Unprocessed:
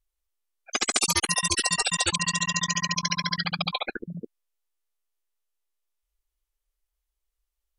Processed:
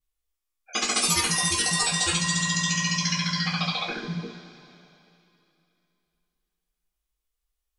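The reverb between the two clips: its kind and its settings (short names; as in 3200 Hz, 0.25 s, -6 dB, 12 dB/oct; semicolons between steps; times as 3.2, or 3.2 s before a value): two-slope reverb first 0.3 s, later 2.9 s, from -18 dB, DRR -7 dB; gain -7 dB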